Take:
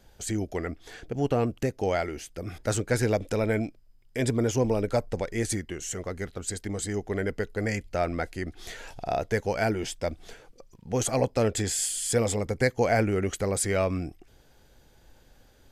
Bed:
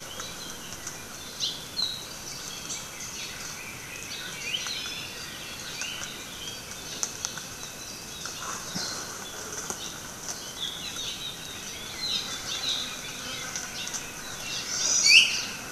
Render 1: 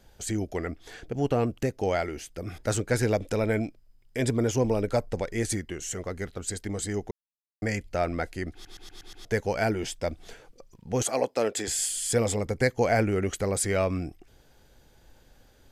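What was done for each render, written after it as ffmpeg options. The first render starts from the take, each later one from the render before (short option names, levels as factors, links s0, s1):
-filter_complex "[0:a]asettb=1/sr,asplit=3[s0][s1][s2];[s0]atrim=end=11.024[s3];[s1]atrim=start=11.02:end=11.68,asetpts=PTS-STARTPTS,afade=t=in:d=0.004:c=qsin,afade=t=out:st=0.656:d=0.004:c=qsin,highpass=310[s4];[s2]atrim=start=11.676[s5];[s3][s4]acrossfade=d=0.004:c1=hsin:c2=qsin[s6];[s6][s5]acrossfade=d=0.004:c1=qsin:c2=hsin,asplit=9[s7][s8][s9][s10][s11][s12][s13][s14][s15];[s7]atrim=end=7.11,asetpts=PTS-STARTPTS,afade=t=out:st=7.106:d=0.004:c=hsin[s16];[s8]atrim=start=7.11:end=7.62,asetpts=PTS-STARTPTS,volume=0[s17];[s9]atrim=start=7.62:end=8.652,asetpts=PTS-STARTPTS,afade=t=in:d=0.004:c=hsin[s18];[s10]atrim=start=8.528:end=8.652[s19];[s11]atrim=start=8.528:end=8.652[s20];[s12]atrim=start=8.528:end=8.652[s21];[s13]atrim=start=8.528:end=8.652[s22];[s14]atrim=start=8.528:end=8.652[s23];[s15]atrim=start=9.248[s24];[s16][s17][s18]concat=n=3:v=0:a=1[s25];[s25][s19]acrossfade=d=0.004:c1=hsin:c2=hsin[s26];[s26][s20]acrossfade=d=0.004:c1=hsin:c2=hsin[s27];[s27][s21]acrossfade=d=0.004:c1=hsin:c2=hsin[s28];[s28][s22]acrossfade=d=0.004:c1=hsin:c2=hsin[s29];[s29][s23]acrossfade=d=0.004:c1=hsin:c2=hsin[s30];[s30][s24]acrossfade=d=0.004:c1=hsin:c2=hsin"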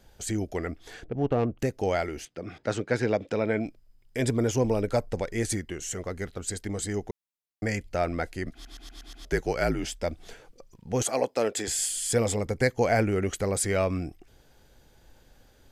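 -filter_complex "[0:a]asettb=1/sr,asplit=3[s0][s1][s2];[s0]atrim=end=1.044[s3];[s1]atrim=start=1.04:end=1.59,asetpts=PTS-STARTPTS,afade=t=in:d=0.004:c=qsin,afade=t=out:st=0.546:d=0.004:c=qsin,adynamicsmooth=sensitivity=1.5:basefreq=1600[s4];[s2]atrim=start=1.586[s5];[s3][s4]acrossfade=d=0.004:c1=hsin:c2=qsin[s6];[s6][s5]acrossfade=d=0.004:c1=qsin:c2=hsin,asettb=1/sr,asplit=3[s7][s8][s9];[s7]atrim=end=2.254[s10];[s8]atrim=start=2.25:end=3.66,asetpts=PTS-STARTPTS,afade=t=in:d=0.004:c=qsin,afade=t=out:st=1.406:d=0.004:c=qsin,highpass=140,lowpass=4200[s11];[s9]atrim=start=3.656[s12];[s10][s11]acrossfade=d=0.004:c1=hsin:c2=qsin[s13];[s13][s12]acrossfade=d=0.004:c1=qsin:c2=hsin,asettb=1/sr,asplit=3[s14][s15][s16];[s14]atrim=end=8.454[s17];[s15]atrim=start=8.45:end=10.03,asetpts=PTS-STARTPTS,afade=t=in:d=0.004:c=qsin,afade=t=out:st=1.576:d=0.004:c=qsin,afreqshift=-54[s18];[s16]atrim=start=10.026[s19];[s17][s18]acrossfade=d=0.004:c1=hsin:c2=qsin[s20];[s20][s19]acrossfade=d=0.004:c1=qsin:c2=hsin"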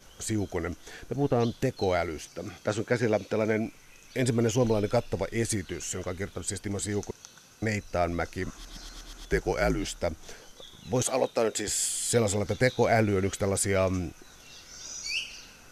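-filter_complex "[1:a]volume=0.158[s0];[0:a][s0]amix=inputs=2:normalize=0"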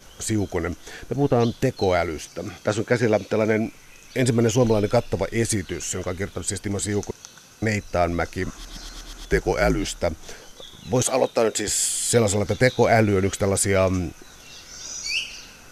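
-af "volume=2"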